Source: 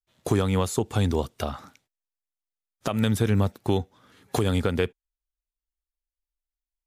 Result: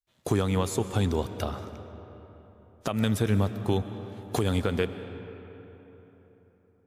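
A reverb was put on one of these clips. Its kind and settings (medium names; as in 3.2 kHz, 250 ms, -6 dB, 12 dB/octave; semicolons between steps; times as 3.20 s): algorithmic reverb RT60 3.9 s, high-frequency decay 0.55×, pre-delay 85 ms, DRR 10.5 dB; trim -2.5 dB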